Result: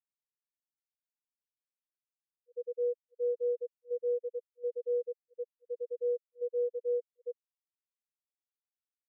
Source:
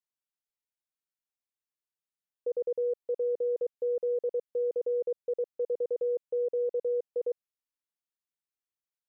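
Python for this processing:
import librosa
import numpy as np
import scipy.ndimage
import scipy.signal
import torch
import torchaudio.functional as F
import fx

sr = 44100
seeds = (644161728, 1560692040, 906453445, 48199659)

y = fx.auto_swell(x, sr, attack_ms=107.0)
y = fx.level_steps(y, sr, step_db=10)
y = fx.spectral_expand(y, sr, expansion=2.5)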